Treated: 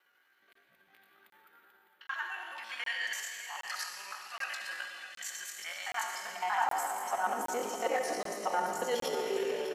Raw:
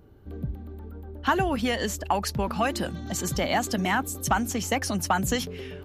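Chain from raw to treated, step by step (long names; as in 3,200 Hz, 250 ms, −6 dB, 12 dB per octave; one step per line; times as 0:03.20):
reversed piece by piece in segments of 42 ms
high-shelf EQ 6,500 Hz −2.5 dB
comb filter 5.5 ms, depth 36%
reversed playback
downward compressor 8 to 1, threshold −35 dBFS, peak gain reduction 17.5 dB
reversed playback
high-pass filter sweep 1,800 Hz → 440 Hz, 0:03.34–0:04.44
four-comb reverb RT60 1.5 s, combs from 27 ms, DRR 1.5 dB
tempo change 0.6×
on a send: single-tap delay 607 ms −11.5 dB
on the sum: dynamic equaliser 860 Hz, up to +5 dB, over −47 dBFS, Q 0.8
regular buffer underruns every 0.77 s, samples 1,024, zero, from 0:00.53
level −1 dB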